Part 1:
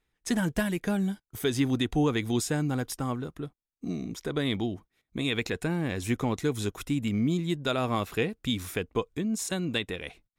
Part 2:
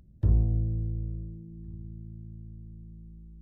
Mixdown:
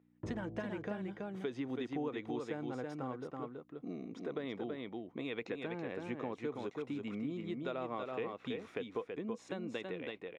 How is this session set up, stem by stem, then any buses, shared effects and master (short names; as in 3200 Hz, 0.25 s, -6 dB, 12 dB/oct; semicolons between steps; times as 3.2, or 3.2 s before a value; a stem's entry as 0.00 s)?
-4.5 dB, 0.00 s, no send, echo send -5 dB, thirty-one-band EQ 125 Hz +5 dB, 500 Hz +4 dB, 1600 Hz -4 dB, 6300 Hz +3 dB
+0.5 dB, 0.00 s, no send, no echo send, gate with hold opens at -42 dBFS; auto duck -14 dB, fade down 1.95 s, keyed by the first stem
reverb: off
echo: echo 0.328 s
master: hum 60 Hz, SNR 26 dB; BPF 290–2100 Hz; compressor 2.5:1, threshold -38 dBFS, peak gain reduction 9 dB